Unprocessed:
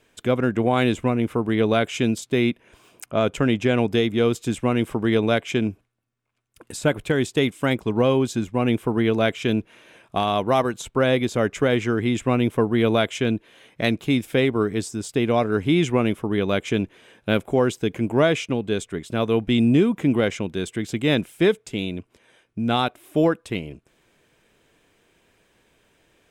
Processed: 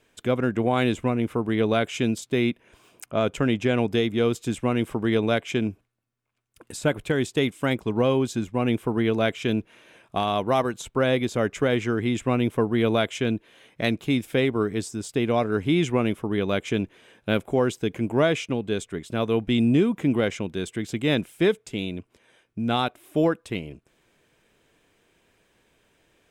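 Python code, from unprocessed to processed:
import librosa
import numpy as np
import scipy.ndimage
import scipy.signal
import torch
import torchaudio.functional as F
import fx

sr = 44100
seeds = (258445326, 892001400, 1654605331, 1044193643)

y = F.gain(torch.from_numpy(x), -2.5).numpy()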